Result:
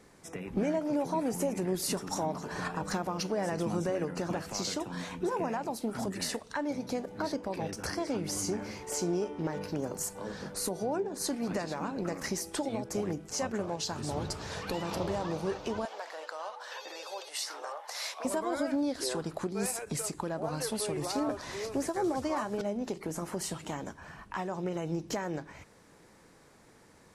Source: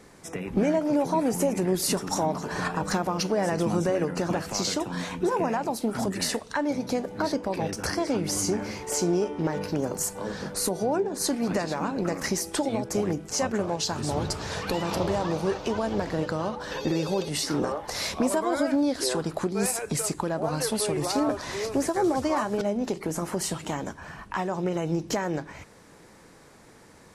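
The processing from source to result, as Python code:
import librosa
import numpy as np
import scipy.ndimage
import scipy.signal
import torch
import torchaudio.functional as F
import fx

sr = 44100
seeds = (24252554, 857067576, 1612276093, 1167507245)

y = fx.highpass(x, sr, hz=620.0, slope=24, at=(15.85, 18.25))
y = fx.end_taper(y, sr, db_per_s=400.0)
y = y * librosa.db_to_amplitude(-6.5)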